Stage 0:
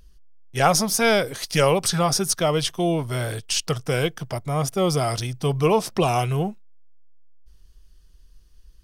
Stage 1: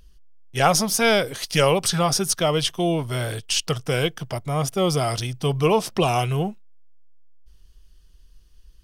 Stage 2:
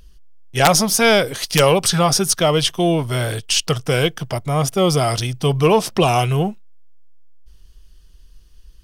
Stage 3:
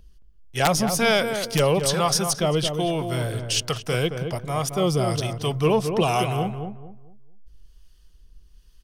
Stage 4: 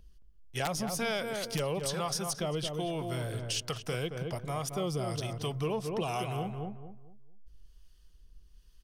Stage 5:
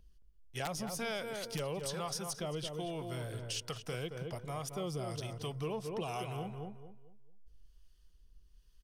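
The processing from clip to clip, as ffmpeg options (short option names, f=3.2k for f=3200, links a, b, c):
-af "equalizer=f=3k:t=o:w=0.47:g=4"
-af "aeval=exprs='(mod(1.78*val(0)+1,2)-1)/1.78':c=same,acontrast=31"
-filter_complex "[0:a]acrossover=split=570[a][b];[a]aeval=exprs='val(0)*(1-0.5/2+0.5/2*cos(2*PI*1.2*n/s))':c=same[c];[b]aeval=exprs='val(0)*(1-0.5/2-0.5/2*cos(2*PI*1.2*n/s))':c=same[d];[c][d]amix=inputs=2:normalize=0,asplit=2[e][f];[f]adelay=221,lowpass=f=1.2k:p=1,volume=-6dB,asplit=2[g][h];[h]adelay=221,lowpass=f=1.2k:p=1,volume=0.3,asplit=2[i][j];[j]adelay=221,lowpass=f=1.2k:p=1,volume=0.3,asplit=2[k][l];[l]adelay=221,lowpass=f=1.2k:p=1,volume=0.3[m];[g][i][k][m]amix=inputs=4:normalize=0[n];[e][n]amix=inputs=2:normalize=0,volume=-4dB"
-af "acompressor=threshold=-27dB:ratio=2.5,volume=-5.5dB"
-af "aecho=1:1:219|438|657:0.1|0.033|0.0109,volume=-5.5dB"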